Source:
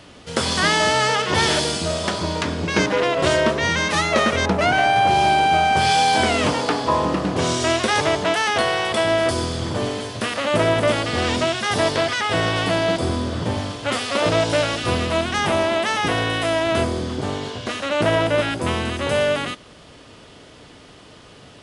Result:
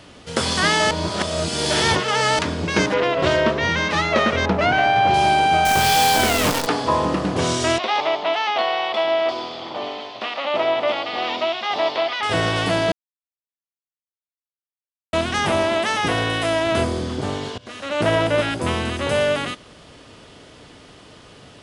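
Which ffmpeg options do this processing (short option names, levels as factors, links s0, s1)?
-filter_complex "[0:a]asettb=1/sr,asplit=3[s0][s1][s2];[s0]atrim=end=2.944[s3];[s1]atrim=start=2.94:end=5.14,asetpts=PTS-STARTPTS,afade=t=in:d=0.004:c=qsin,afade=t=out:st=2.196:d=0.004:c=qsin,lowpass=4600[s4];[s2]atrim=start=5.136[s5];[s3][s4]acrossfade=d=0.004:c1=hsin:c2=qsin[s6];[s6][s5]acrossfade=d=0.004:c1=qsin:c2=hsin,asettb=1/sr,asplit=3[s7][s8][s9];[s7]atrim=end=5.654[s10];[s8]atrim=start=5.65:end=6.67,asetpts=PTS-STARTPTS,afade=t=in:d=0.004:c=qsin,afade=t=out:st=1.016:d=0.004:c=qsin,acrusher=bits=4:dc=4:mix=0:aa=0.000001[s11];[s9]atrim=start=6.666[s12];[s10][s11]acrossfade=d=0.004:c1=hsin:c2=qsin[s13];[s13][s12]acrossfade=d=0.004:c1=qsin:c2=hsin,asettb=1/sr,asplit=3[s14][s15][s16];[s14]atrim=end=7.784[s17];[s15]atrim=start=7.78:end=12.23,asetpts=PTS-STARTPTS,afade=t=in:d=0.004:c=qsin,afade=t=out:st=4.446:d=0.004:c=qsin,highpass=470,equalizer=f=470:t=q:w=4:g=-6,equalizer=f=760:t=q:w=4:g=5,equalizer=f=1600:t=q:w=4:g=-10,lowpass=f=4100:w=0.5412,lowpass=f=4100:w=1.3066[s18];[s16]atrim=start=12.226[s19];[s17][s18]acrossfade=d=0.004:c1=hsin:c2=qsin[s20];[s20][s19]acrossfade=d=0.004:c1=qsin:c2=hsin,asplit=6[s21][s22][s23][s24][s25][s26];[s21]atrim=end=0.912[s27];[s22]atrim=start=0.908:end=2.392,asetpts=PTS-STARTPTS,areverse[s28];[s23]atrim=start=2.388:end=12.92,asetpts=PTS-STARTPTS,afade=t=out:st=10.528:d=0.004:c=hsin[s29];[s24]atrim=start=12.92:end=15.13,asetpts=PTS-STARTPTS,volume=0[s30];[s25]atrim=start=15.13:end=17.58,asetpts=PTS-STARTPTS,afade=t=in:d=0.004:c=hsin,afade=t=out:st=2.446:d=0.004:c=hsin:silence=0.1[s31];[s26]atrim=start=17.58,asetpts=PTS-STARTPTS,afade=t=in:d=0.5:silence=0.1[s32];[s27][s28]acrossfade=d=0.004:c1=hsin:c2=hsin[s33];[s29][s30][s31][s32]concat=n=4:v=0:a=1[s34];[s33][s34]acrossfade=d=0.004:c1=hsin:c2=hsin"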